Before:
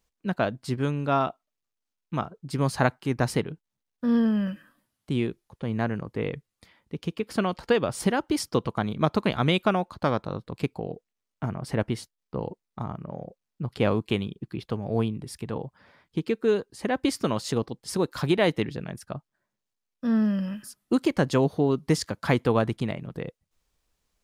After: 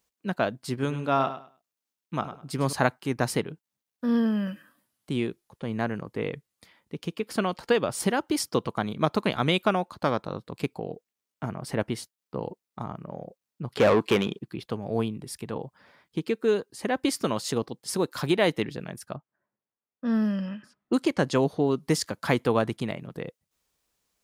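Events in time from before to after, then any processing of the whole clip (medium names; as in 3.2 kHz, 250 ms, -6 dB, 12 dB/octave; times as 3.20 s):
0.72–2.73 s: feedback delay 102 ms, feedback 21%, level -11.5 dB
13.77–14.39 s: overdrive pedal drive 24 dB, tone 1.9 kHz, clips at -10.5 dBFS
19.16–21.80 s: level-controlled noise filter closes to 1.5 kHz, open at -18 dBFS
whole clip: high-pass 160 Hz 6 dB/octave; treble shelf 8.2 kHz +6 dB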